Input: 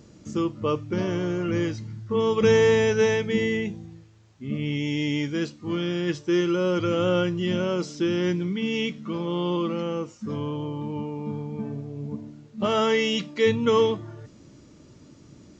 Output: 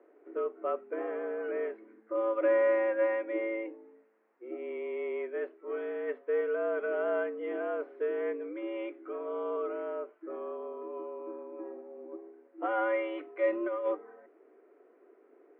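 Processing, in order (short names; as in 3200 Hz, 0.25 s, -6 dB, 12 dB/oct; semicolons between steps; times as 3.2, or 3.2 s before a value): tracing distortion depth 0.049 ms; 13.52–13.95 negative-ratio compressor -22 dBFS, ratio -0.5; mistuned SSB +110 Hz 230–2000 Hz; gain -7 dB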